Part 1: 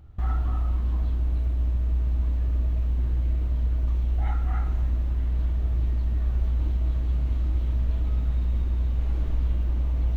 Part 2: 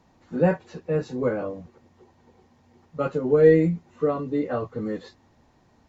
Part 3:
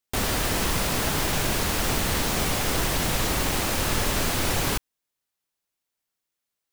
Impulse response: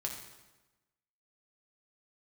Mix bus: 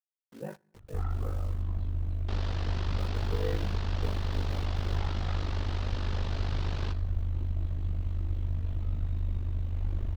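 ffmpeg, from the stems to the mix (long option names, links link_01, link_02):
-filter_complex "[0:a]adelay=750,volume=-3.5dB[link_01];[1:a]acrusher=bits=5:mix=0:aa=0.000001,volume=-18dB,asplit=2[link_02][link_03];[link_03]volume=-21.5dB[link_04];[2:a]lowpass=frequency=4500:width=0.5412,lowpass=frequency=4500:width=1.3066,equalizer=frequency=2200:width=2:gain=-5,adelay=2150,volume=-13dB,asplit=2[link_05][link_06];[link_06]volume=-6dB[link_07];[3:a]atrim=start_sample=2205[link_08];[link_04][link_07]amix=inputs=2:normalize=0[link_09];[link_09][link_08]afir=irnorm=-1:irlink=0[link_10];[link_01][link_02][link_05][link_10]amix=inputs=4:normalize=0,aeval=exprs='val(0)*sin(2*PI*25*n/s)':channel_layout=same"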